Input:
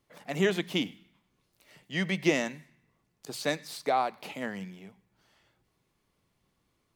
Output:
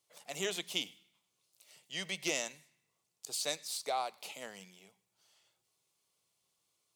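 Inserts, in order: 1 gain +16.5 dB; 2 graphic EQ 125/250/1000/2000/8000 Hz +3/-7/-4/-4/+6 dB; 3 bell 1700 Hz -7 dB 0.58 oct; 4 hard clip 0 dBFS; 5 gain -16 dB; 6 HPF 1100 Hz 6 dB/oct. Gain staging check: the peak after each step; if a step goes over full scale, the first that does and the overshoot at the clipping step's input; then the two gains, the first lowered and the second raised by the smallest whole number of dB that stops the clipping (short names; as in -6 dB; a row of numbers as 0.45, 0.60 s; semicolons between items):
+5.0, +3.5, +3.5, 0.0, -16.0, -18.0 dBFS; step 1, 3.5 dB; step 1 +12.5 dB, step 5 -12 dB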